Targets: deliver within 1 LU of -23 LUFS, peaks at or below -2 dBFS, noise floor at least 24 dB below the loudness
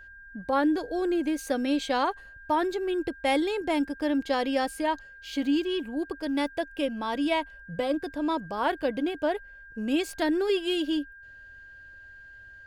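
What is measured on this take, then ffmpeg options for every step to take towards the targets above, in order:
steady tone 1600 Hz; tone level -46 dBFS; loudness -28.5 LUFS; peak -14.0 dBFS; loudness target -23.0 LUFS
-> -af "bandreject=f=1.6k:w=30"
-af "volume=5.5dB"

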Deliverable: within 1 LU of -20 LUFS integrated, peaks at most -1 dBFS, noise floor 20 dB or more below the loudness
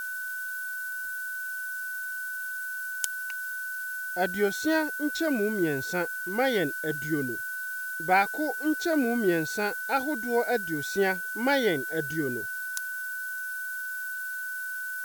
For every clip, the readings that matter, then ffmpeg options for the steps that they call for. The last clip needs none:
steady tone 1500 Hz; tone level -32 dBFS; noise floor -35 dBFS; noise floor target -49 dBFS; loudness -29.0 LUFS; peak -7.0 dBFS; loudness target -20.0 LUFS
-> -af "bandreject=f=1.5k:w=30"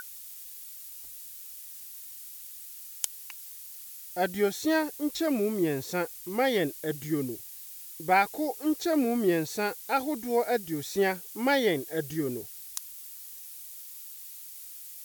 steady tone none; noise floor -45 dBFS; noise floor target -50 dBFS
-> -af "afftdn=nr=6:nf=-45"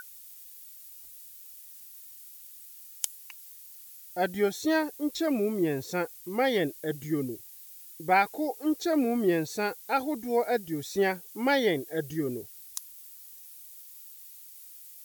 noise floor -49 dBFS; loudness -29.0 LUFS; peak -7.0 dBFS; loudness target -20.0 LUFS
-> -af "volume=9dB,alimiter=limit=-1dB:level=0:latency=1"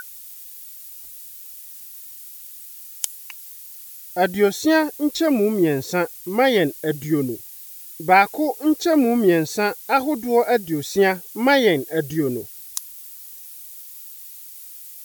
loudness -20.0 LUFS; peak -1.0 dBFS; noise floor -40 dBFS

